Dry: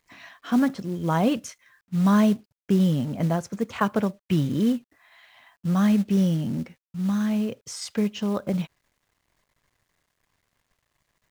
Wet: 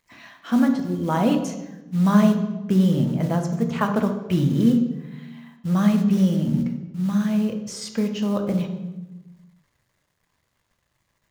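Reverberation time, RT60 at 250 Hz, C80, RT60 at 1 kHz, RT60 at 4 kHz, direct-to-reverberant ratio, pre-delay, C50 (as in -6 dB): 1.1 s, 1.7 s, 10.0 dB, 1.0 s, 0.80 s, 5.0 dB, 3 ms, 8.0 dB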